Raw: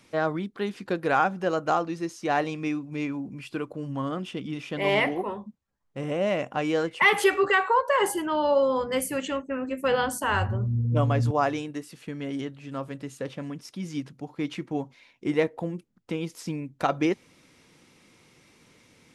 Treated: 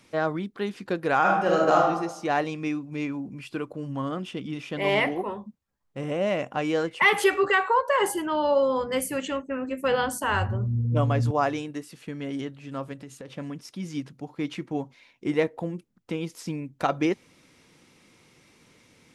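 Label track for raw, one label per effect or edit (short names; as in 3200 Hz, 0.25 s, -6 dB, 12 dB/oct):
1.200000	1.860000	reverb throw, RT60 0.83 s, DRR -3 dB
12.930000	13.360000	compressor, threshold -37 dBFS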